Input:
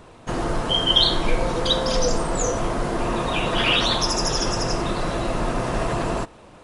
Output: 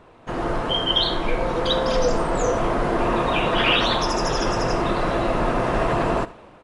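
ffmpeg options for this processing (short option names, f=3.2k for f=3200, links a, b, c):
-af "dynaudnorm=f=160:g=5:m=7dB,bass=f=250:g=-4,treble=f=4k:g=-12,aecho=1:1:79:0.112,volume=-2.5dB"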